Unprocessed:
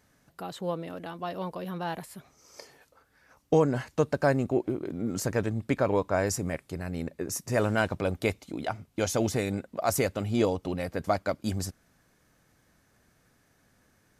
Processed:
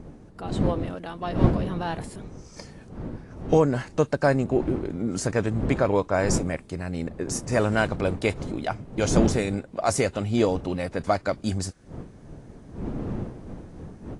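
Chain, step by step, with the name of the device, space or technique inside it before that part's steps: smartphone video outdoors (wind noise 260 Hz -35 dBFS; level rider gain up to 3.5 dB; AAC 48 kbps 22.05 kHz)

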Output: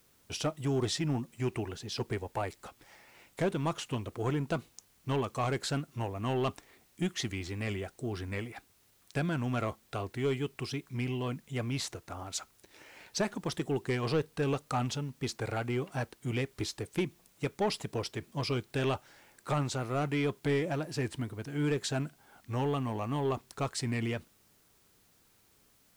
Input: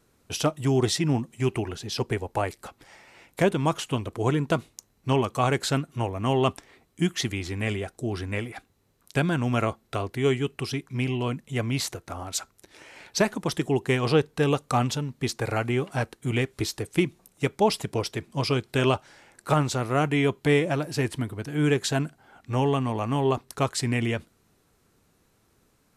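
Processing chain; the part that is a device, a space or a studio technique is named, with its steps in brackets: compact cassette (saturation -16 dBFS, distortion -15 dB; low-pass 9.9 kHz; wow and flutter; white noise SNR 33 dB); trim -6 dB

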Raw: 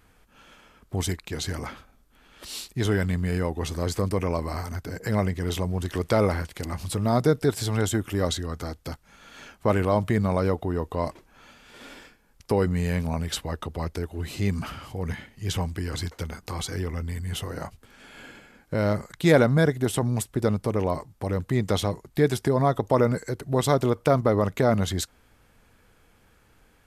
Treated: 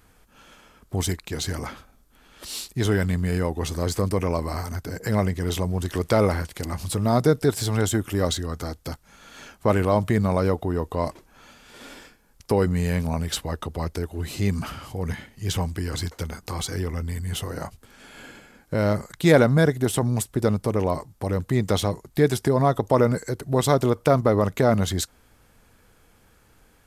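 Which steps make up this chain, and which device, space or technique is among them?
exciter from parts (in parallel at -5.5 dB: high-pass 3 kHz 6 dB/octave + saturation -37 dBFS, distortion -6 dB + high-pass 2.5 kHz 12 dB/octave); on the sum: trim +2 dB

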